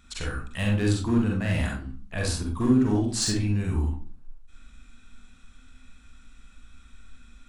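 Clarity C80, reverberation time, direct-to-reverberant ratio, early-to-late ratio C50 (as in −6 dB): 9.5 dB, 0.45 s, −1.5 dB, 2.5 dB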